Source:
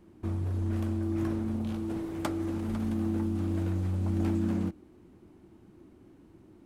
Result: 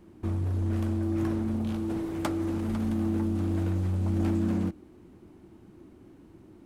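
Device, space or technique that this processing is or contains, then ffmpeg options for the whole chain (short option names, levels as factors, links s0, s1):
parallel distortion: -filter_complex "[0:a]asplit=2[s0][s1];[s1]asoftclip=type=hard:threshold=0.0282,volume=0.447[s2];[s0][s2]amix=inputs=2:normalize=0"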